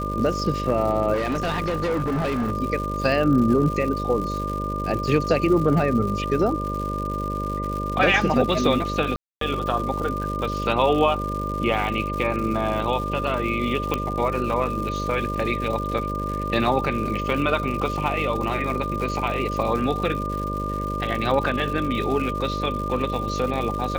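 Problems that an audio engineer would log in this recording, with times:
mains buzz 50 Hz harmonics 12 −29 dBFS
surface crackle 210 per second −30 dBFS
whistle 1,200 Hz −28 dBFS
0:01.13–0:02.52: clipping −20.5 dBFS
0:09.16–0:09.41: drop-out 253 ms
0:13.94: click −9 dBFS

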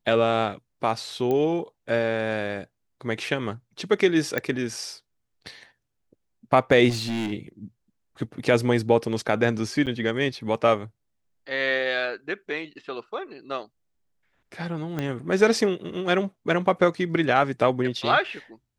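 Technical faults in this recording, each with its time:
0:01.31: click −16 dBFS
0:04.38: click −12 dBFS
0:06.89–0:07.33: clipping −24.5 dBFS
0:09.86–0:09.87: drop-out 8.1 ms
0:14.99: click −15 dBFS

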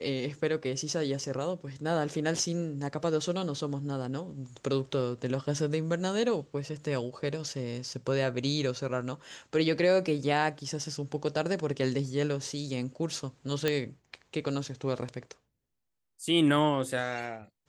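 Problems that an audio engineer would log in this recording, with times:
0:13.68: click −13 dBFS

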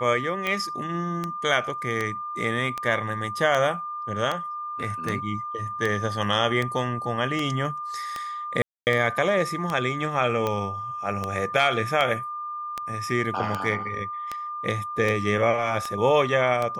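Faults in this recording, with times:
scratch tick 78 rpm −13 dBFS
whistle 1,200 Hz −30 dBFS
0:08.62–0:08.87: drop-out 249 ms

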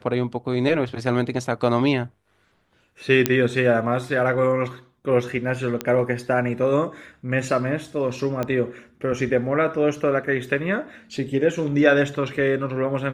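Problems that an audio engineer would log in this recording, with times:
0:03.26: click −2 dBFS
0:05.81: click −10 dBFS
0:08.43: click −13 dBFS

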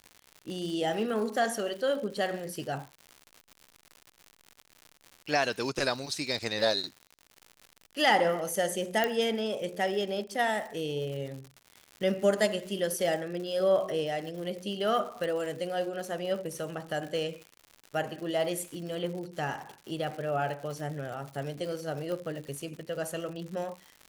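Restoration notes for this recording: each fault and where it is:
surface crackle 140 per second −38 dBFS
0:09.04: click −13 dBFS
0:15.24: click
0:22.12: click −24 dBFS

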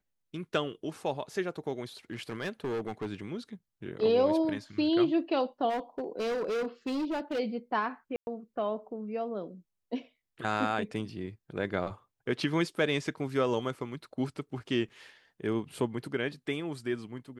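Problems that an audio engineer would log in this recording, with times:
0:02.11–0:03.07: clipping −29.5 dBFS
0:05.69–0:07.40: clipping −28.5 dBFS
0:08.16–0:08.27: drop-out 111 ms

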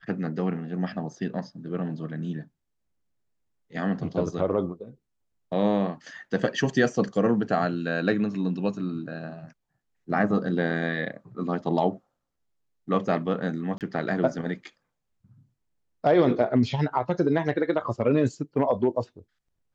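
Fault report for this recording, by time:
0:13.78–0:13.81: drop-out 28 ms

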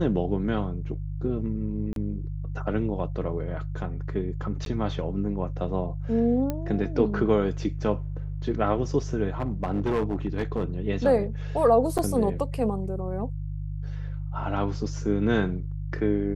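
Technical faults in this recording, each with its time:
mains hum 50 Hz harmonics 3 −32 dBFS
0:01.93–0:01.96: drop-out 32 ms
0:04.65–0:04.66: drop-out 12 ms
0:06.50: click −15 dBFS
0:09.40–0:10.76: clipping −21 dBFS
0:11.98–0:11.99: drop-out 7.6 ms

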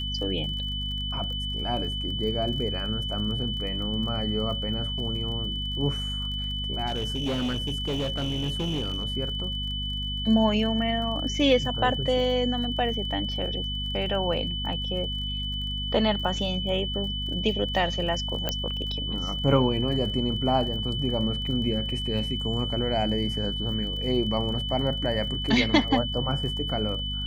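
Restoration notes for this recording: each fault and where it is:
surface crackle 33 per second −36 dBFS
mains hum 50 Hz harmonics 5 −33 dBFS
whistle 3,000 Hz −31 dBFS
0:06.86–0:09.04: clipping −24 dBFS
0:18.49: click −11 dBFS

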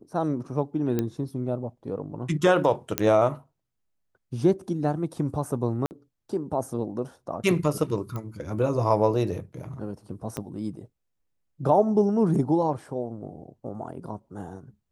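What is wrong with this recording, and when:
0:00.99: click −13 dBFS
0:02.98: click −5 dBFS
0:05.86–0:05.91: drop-out 49 ms
0:08.16: click −21 dBFS
0:10.37: click −16 dBFS

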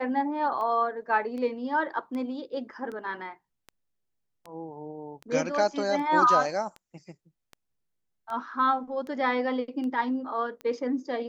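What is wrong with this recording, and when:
scratch tick 78 rpm −27 dBFS

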